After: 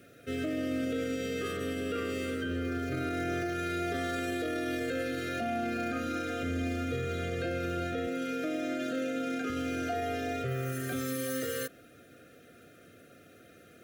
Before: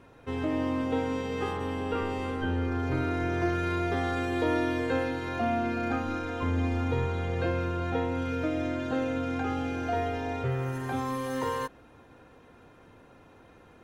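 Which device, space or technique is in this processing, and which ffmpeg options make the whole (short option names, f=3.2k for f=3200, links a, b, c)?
PA system with an anti-feedback notch: -filter_complex "[0:a]highpass=110,asuperstop=centerf=930:order=20:qfactor=2.1,aemphasis=mode=production:type=50fm,alimiter=level_in=1dB:limit=-24dB:level=0:latency=1:release=29,volume=-1dB,asettb=1/sr,asplit=3[a][b][c];[a]atrim=end=8.074[d];[b]atrim=start=8.07:end=9.5,asetpts=PTS-STARTPTS,afade=t=in:d=0.004:c=qsin,afade=t=out:st=1.426:d=0.004:c=qsin,highpass=f=160:w=0.5412,highpass=f=160:w=1.3066[e];[c]atrim=start=9.496[f];[d][e]acrossfade=d=0.004:c1=hsin:c2=qsin[g];[g][f]acrossfade=d=0.004:c1=qsin:c2=hsin"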